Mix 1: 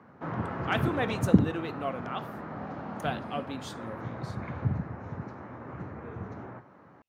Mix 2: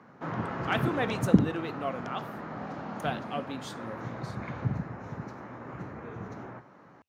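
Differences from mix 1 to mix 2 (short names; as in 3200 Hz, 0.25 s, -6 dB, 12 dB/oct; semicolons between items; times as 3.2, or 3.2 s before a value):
background: remove LPF 2400 Hz 6 dB/oct; master: add bell 86 Hz -12 dB 0.26 oct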